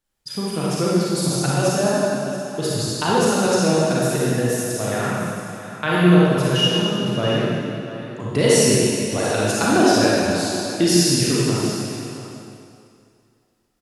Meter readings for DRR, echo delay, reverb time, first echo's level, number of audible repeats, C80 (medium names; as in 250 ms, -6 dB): -7.5 dB, 683 ms, 2.7 s, -13.0 dB, 1, -3.0 dB